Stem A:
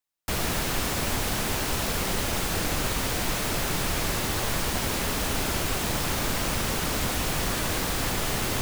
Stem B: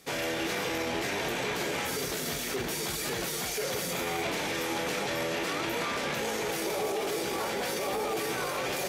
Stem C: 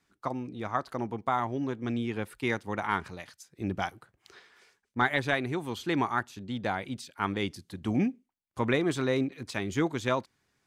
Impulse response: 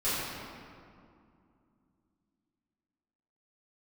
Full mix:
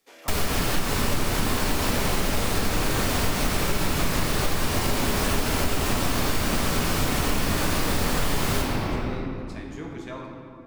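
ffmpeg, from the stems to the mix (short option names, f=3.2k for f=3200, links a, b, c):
-filter_complex "[0:a]volume=1.5dB,asplit=2[a][b];[b]volume=-3dB[c];[1:a]highpass=f=250:w=0.5412,highpass=f=250:w=1.3066,volume=-16.5dB[d];[2:a]volume=-13.5dB,asplit=2[e][f];[f]volume=-7dB[g];[3:a]atrim=start_sample=2205[h];[c][g]amix=inputs=2:normalize=0[i];[i][h]afir=irnorm=-1:irlink=0[j];[a][d][e][j]amix=inputs=4:normalize=0,acompressor=threshold=-22dB:ratio=3"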